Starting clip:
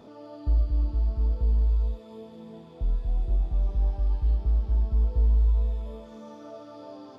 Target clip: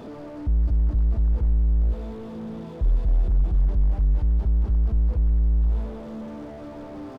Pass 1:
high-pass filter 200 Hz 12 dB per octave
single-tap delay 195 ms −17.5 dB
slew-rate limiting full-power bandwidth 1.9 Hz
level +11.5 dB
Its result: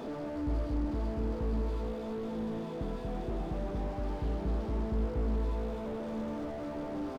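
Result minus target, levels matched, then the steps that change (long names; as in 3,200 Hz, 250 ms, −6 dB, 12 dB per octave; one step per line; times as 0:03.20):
250 Hz band +11.5 dB
change: high-pass filter 52 Hz 12 dB per octave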